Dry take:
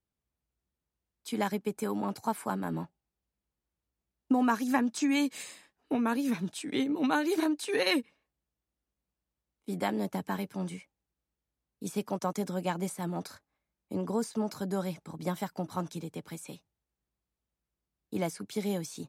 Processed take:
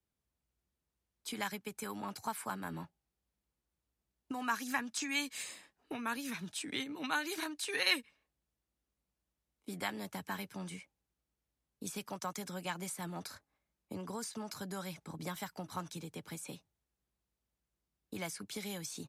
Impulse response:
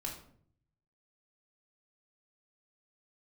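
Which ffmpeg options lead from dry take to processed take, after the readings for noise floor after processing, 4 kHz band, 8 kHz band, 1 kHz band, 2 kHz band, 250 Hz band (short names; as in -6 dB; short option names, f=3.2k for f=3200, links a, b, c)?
under -85 dBFS, 0.0 dB, 0.0 dB, -6.5 dB, -1.0 dB, -12.5 dB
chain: -filter_complex "[0:a]acrossover=split=100|1100|3200[a][b][c][d];[b]acompressor=threshold=-43dB:ratio=6[e];[a][e][c][d]amix=inputs=4:normalize=0,aresample=32000,aresample=44100"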